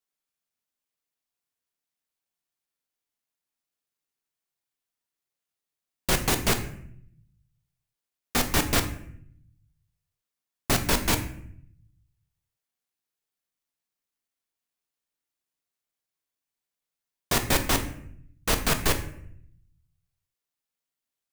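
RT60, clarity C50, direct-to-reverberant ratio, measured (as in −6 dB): 0.70 s, 11.0 dB, 6.0 dB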